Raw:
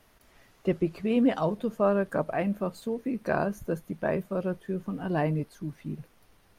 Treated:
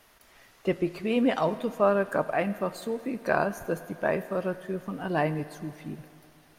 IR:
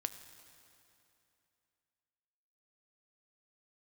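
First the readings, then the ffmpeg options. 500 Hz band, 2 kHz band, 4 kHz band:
+1.5 dB, +4.5 dB, +5.0 dB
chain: -filter_complex "[0:a]asplit=2[a][b];[b]highpass=f=670:p=1[c];[1:a]atrim=start_sample=2205[d];[c][d]afir=irnorm=-1:irlink=0,volume=7dB[e];[a][e]amix=inputs=2:normalize=0,volume=-4.5dB"

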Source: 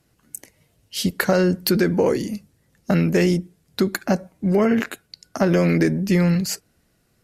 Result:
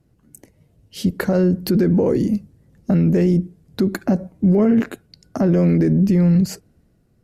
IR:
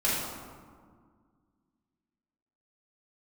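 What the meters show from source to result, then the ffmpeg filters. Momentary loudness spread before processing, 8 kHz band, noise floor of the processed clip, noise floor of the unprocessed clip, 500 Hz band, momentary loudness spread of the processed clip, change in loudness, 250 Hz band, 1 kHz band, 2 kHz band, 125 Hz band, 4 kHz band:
17 LU, n/a, -60 dBFS, -65 dBFS, 0.0 dB, 10 LU, +2.5 dB, +4.0 dB, -4.5 dB, -7.0 dB, +4.5 dB, -7.0 dB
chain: -af "dynaudnorm=f=220:g=7:m=11.5dB,tiltshelf=f=730:g=8.5,alimiter=limit=-7dB:level=0:latency=1:release=80,volume=-2dB"

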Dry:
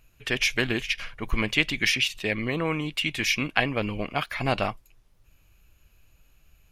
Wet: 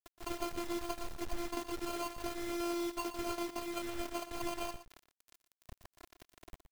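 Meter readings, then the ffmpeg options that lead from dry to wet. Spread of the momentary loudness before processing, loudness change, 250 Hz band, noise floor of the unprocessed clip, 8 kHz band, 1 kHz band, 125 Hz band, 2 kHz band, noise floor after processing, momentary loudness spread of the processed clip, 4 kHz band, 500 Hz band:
7 LU, -13.5 dB, -9.0 dB, -62 dBFS, -10.0 dB, -8.0 dB, -22.0 dB, -22.0 dB, under -85 dBFS, 21 LU, -18.5 dB, -9.0 dB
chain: -filter_complex "[0:a]highshelf=f=6.9k:g=-8.5,aecho=1:1:3.5:0.57,alimiter=limit=-15.5dB:level=0:latency=1:release=270,acompressor=threshold=-42dB:ratio=2,acrusher=samples=24:mix=1:aa=0.000001,afftfilt=real='hypot(re,im)*cos(PI*b)':imag='0':win_size=512:overlap=0.75,acrusher=bits=7:mix=0:aa=0.000001,asplit=2[a][b];[b]aecho=0:1:119:0.237[c];[a][c]amix=inputs=2:normalize=0,volume=1.5dB"

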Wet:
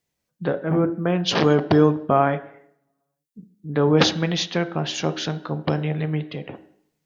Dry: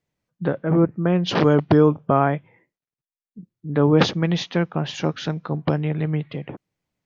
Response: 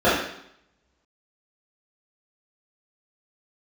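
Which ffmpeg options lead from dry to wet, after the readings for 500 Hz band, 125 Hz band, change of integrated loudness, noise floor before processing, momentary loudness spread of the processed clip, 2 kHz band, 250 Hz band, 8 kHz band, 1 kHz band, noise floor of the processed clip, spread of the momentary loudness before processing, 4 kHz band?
-0.5 dB, -2.5 dB, -0.5 dB, under -85 dBFS, 12 LU, +1.0 dB, -1.5 dB, n/a, +0.5 dB, -79 dBFS, 12 LU, +4.5 dB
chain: -filter_complex "[0:a]highshelf=f=3.4k:g=11.5,asplit=2[a][b];[1:a]atrim=start_sample=2205,asetrate=48510,aresample=44100[c];[b][c]afir=irnorm=-1:irlink=0,volume=-32dB[d];[a][d]amix=inputs=2:normalize=0,volume=-2dB"

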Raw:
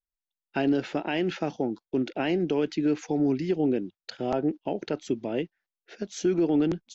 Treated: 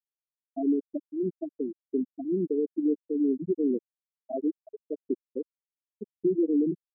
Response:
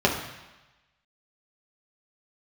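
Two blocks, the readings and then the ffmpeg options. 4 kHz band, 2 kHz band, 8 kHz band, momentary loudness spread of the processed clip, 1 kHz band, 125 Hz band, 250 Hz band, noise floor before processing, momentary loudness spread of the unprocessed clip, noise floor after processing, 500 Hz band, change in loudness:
under -40 dB, under -40 dB, n/a, 13 LU, under -10 dB, -9.0 dB, -1.5 dB, under -85 dBFS, 8 LU, under -85 dBFS, -2.5 dB, -2.0 dB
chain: -af "aeval=exprs='sgn(val(0))*max(abs(val(0))-0.00376,0)':c=same,afftfilt=real='re*gte(hypot(re,im),0.282)':imag='im*gte(hypot(re,im),0.282)':win_size=1024:overlap=0.75"

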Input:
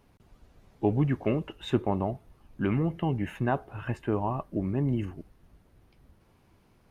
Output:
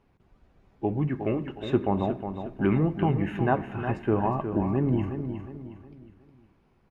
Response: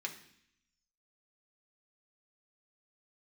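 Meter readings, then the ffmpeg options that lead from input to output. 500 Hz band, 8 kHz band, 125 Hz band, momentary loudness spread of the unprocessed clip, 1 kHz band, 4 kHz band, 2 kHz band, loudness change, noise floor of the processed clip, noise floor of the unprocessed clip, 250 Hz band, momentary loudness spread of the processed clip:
+3.0 dB, n/a, +2.0 dB, 7 LU, +4.0 dB, -1.5 dB, +2.5 dB, +2.5 dB, -64 dBFS, -63 dBFS, +3.0 dB, 11 LU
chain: -filter_complex "[0:a]lowpass=f=1.9k:p=1,dynaudnorm=f=250:g=13:m=6dB,aecho=1:1:362|724|1086|1448:0.376|0.147|0.0572|0.0223,asplit=2[a][b];[1:a]atrim=start_sample=2205[c];[b][c]afir=irnorm=-1:irlink=0,volume=-4dB[d];[a][d]amix=inputs=2:normalize=0,volume=-4.5dB"

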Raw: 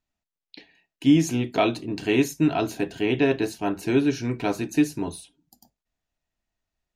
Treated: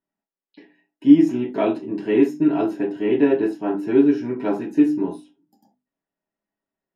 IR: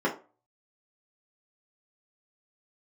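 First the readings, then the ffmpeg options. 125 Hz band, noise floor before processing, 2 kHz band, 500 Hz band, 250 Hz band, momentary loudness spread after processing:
-6.0 dB, under -85 dBFS, -4.5 dB, +4.5 dB, +5.0 dB, 10 LU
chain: -filter_complex "[0:a]bandreject=f=50:t=h:w=6,bandreject=f=100:t=h:w=6,bandreject=f=150:t=h:w=6,bandreject=f=200:t=h:w=6,bandreject=f=250:t=h:w=6,bandreject=f=300:t=h:w=6[a];[1:a]atrim=start_sample=2205,atrim=end_sample=3969[b];[a][b]afir=irnorm=-1:irlink=0,volume=-12.5dB"

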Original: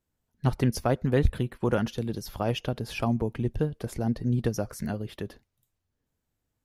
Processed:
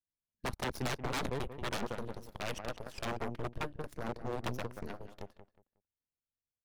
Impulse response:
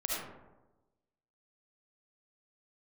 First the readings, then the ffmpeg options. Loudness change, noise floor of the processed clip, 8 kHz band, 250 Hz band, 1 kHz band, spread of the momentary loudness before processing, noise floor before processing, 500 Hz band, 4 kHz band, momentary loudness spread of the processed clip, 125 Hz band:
-10.5 dB, under -85 dBFS, -5.0 dB, -14.0 dB, -4.5 dB, 8 LU, -82 dBFS, -10.5 dB, -3.5 dB, 10 LU, -15.5 dB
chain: -filter_complex "[0:a]aeval=exprs='0.355*(cos(1*acos(clip(val(0)/0.355,-1,1)))-cos(1*PI/2))+0.00501*(cos(3*acos(clip(val(0)/0.355,-1,1)))-cos(3*PI/2))+0.00794*(cos(5*acos(clip(val(0)/0.355,-1,1)))-cos(5*PI/2))+0.0501*(cos(7*acos(clip(val(0)/0.355,-1,1)))-cos(7*PI/2))+0.0355*(cos(8*acos(clip(val(0)/0.355,-1,1)))-cos(8*PI/2))':c=same,asplit=2[a][b];[b]adelay=182,lowpass=f=2.4k:p=1,volume=-11.5dB,asplit=2[c][d];[d]adelay=182,lowpass=f=2.4k:p=1,volume=0.26,asplit=2[e][f];[f]adelay=182,lowpass=f=2.4k:p=1,volume=0.26[g];[a][c][e][g]amix=inputs=4:normalize=0,aeval=exprs='0.0562*(abs(mod(val(0)/0.0562+3,4)-2)-1)':c=same,volume=-2dB"

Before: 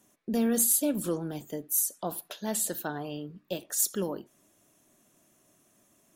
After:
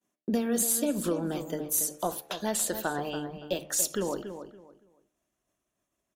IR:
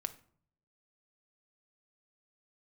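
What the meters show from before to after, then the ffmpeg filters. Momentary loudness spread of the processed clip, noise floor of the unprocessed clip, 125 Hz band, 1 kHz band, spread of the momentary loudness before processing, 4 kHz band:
11 LU, -67 dBFS, +0.5 dB, +4.5 dB, 15 LU, +3.5 dB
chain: -filter_complex "[0:a]highpass=47,asplit=2[a][b];[b]adynamicsmooth=sensitivity=5.5:basefreq=7.6k,volume=1dB[c];[a][c]amix=inputs=2:normalize=0,equalizer=f=100:t=o:w=0.55:g=-11,acompressor=threshold=-23dB:ratio=6,asubboost=boost=9:cutoff=67,agate=range=-33dB:threshold=-49dB:ratio=3:detection=peak,bandreject=f=75.48:t=h:w=4,bandreject=f=150.96:t=h:w=4,bandreject=f=226.44:t=h:w=4,bandreject=f=301.92:t=h:w=4,bandreject=f=377.4:t=h:w=4,bandreject=f=452.88:t=h:w=4,bandreject=f=528.36:t=h:w=4,bandreject=f=603.84:t=h:w=4,bandreject=f=679.32:t=h:w=4,bandreject=f=754.8:t=h:w=4,bandreject=f=830.28:t=h:w=4,asplit=2[d][e];[e]adelay=283,lowpass=f=2.7k:p=1,volume=-9.5dB,asplit=2[f][g];[g]adelay=283,lowpass=f=2.7k:p=1,volume=0.25,asplit=2[h][i];[i]adelay=283,lowpass=f=2.7k:p=1,volume=0.25[j];[f][h][j]amix=inputs=3:normalize=0[k];[d][k]amix=inputs=2:normalize=0"

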